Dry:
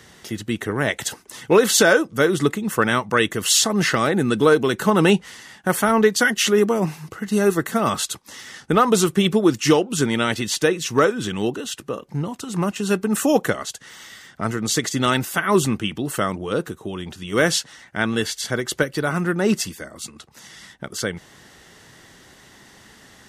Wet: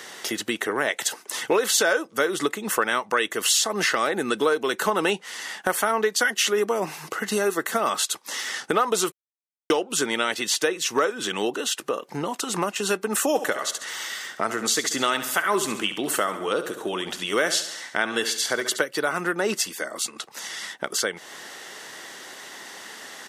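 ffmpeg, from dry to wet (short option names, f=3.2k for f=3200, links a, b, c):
-filter_complex "[0:a]asplit=3[a][b][c];[a]afade=t=out:st=13.34:d=0.02[d];[b]aecho=1:1:69|138|207|276|345:0.251|0.113|0.0509|0.0229|0.0103,afade=t=in:st=13.34:d=0.02,afade=t=out:st=18.8:d=0.02[e];[c]afade=t=in:st=18.8:d=0.02[f];[d][e][f]amix=inputs=3:normalize=0,asplit=3[g][h][i];[g]atrim=end=9.12,asetpts=PTS-STARTPTS,afade=t=out:st=9.116:d=0.004:c=hsin[j];[h]atrim=start=9.12:end=9.7,asetpts=PTS-STARTPTS,volume=0[k];[i]atrim=start=9.7,asetpts=PTS-STARTPTS,afade=t=in:d=0.004:c=hsin[l];[j][k][l]concat=n=3:v=0:a=1,highpass=430,acompressor=threshold=-34dB:ratio=2.5,volume=9dB"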